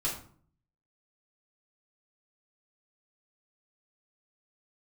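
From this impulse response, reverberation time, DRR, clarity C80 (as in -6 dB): 0.50 s, -5.5 dB, 10.5 dB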